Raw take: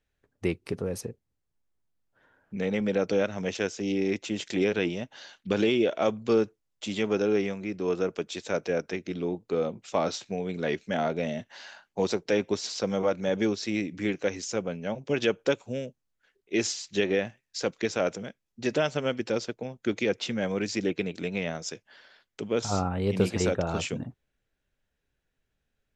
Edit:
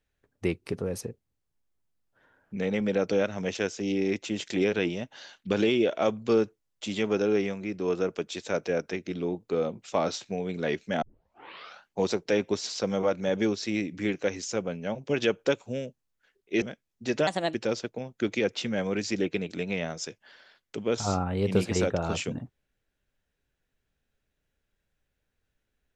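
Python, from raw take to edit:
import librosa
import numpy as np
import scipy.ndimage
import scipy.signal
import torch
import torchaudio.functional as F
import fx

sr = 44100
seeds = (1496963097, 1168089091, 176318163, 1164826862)

y = fx.edit(x, sr, fx.tape_start(start_s=11.02, length_s=0.82),
    fx.cut(start_s=16.62, length_s=1.57),
    fx.speed_span(start_s=18.84, length_s=0.35, speed=1.28), tone=tone)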